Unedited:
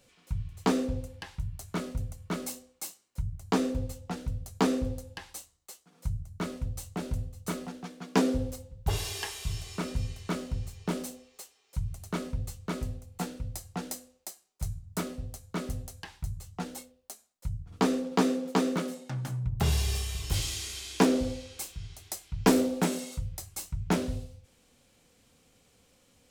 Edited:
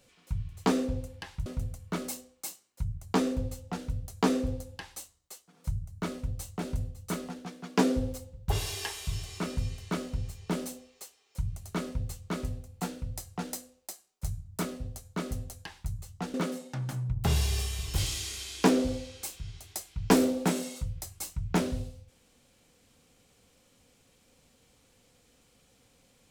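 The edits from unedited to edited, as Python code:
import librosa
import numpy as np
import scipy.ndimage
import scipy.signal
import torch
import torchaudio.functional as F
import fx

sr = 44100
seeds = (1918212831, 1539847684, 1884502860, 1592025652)

y = fx.edit(x, sr, fx.cut(start_s=1.46, length_s=0.38),
    fx.cut(start_s=16.72, length_s=1.98), tone=tone)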